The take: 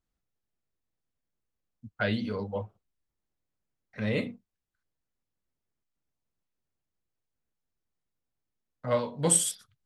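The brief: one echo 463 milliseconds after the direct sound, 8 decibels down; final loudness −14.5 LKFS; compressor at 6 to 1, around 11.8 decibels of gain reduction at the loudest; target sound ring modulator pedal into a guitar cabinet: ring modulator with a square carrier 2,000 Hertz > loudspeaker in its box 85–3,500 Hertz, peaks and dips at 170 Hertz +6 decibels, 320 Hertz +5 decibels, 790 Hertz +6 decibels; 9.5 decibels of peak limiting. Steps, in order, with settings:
downward compressor 6 to 1, threshold −31 dBFS
brickwall limiter −29 dBFS
single-tap delay 463 ms −8 dB
ring modulator with a square carrier 2,000 Hz
loudspeaker in its box 85–3,500 Hz, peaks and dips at 170 Hz +6 dB, 320 Hz +5 dB, 790 Hz +6 dB
level +25 dB

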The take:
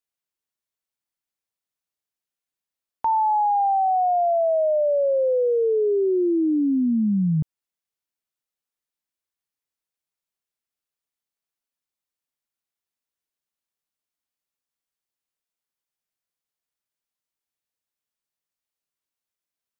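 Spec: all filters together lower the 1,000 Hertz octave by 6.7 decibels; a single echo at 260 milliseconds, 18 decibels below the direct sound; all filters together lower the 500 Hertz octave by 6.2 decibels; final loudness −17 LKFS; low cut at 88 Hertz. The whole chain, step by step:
high-pass filter 88 Hz
parametric band 500 Hz −6 dB
parametric band 1,000 Hz −6.5 dB
single-tap delay 260 ms −18 dB
level +8.5 dB

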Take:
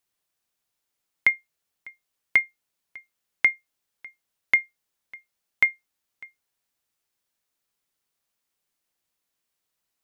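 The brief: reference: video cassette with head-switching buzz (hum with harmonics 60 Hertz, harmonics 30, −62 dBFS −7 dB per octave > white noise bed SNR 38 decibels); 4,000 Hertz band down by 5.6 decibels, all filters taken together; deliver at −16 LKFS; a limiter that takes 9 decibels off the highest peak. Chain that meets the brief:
parametric band 4,000 Hz −8.5 dB
brickwall limiter −18.5 dBFS
hum with harmonics 60 Hz, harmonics 30, −62 dBFS −7 dB per octave
white noise bed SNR 38 dB
level +15.5 dB

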